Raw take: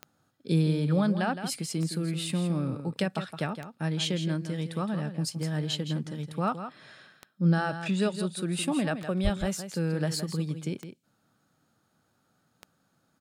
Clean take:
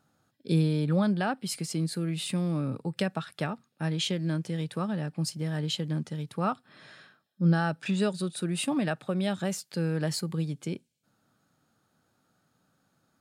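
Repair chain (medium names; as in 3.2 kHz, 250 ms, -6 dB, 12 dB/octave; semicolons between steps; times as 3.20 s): de-click; de-plosive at 9.23 s; inverse comb 165 ms -10 dB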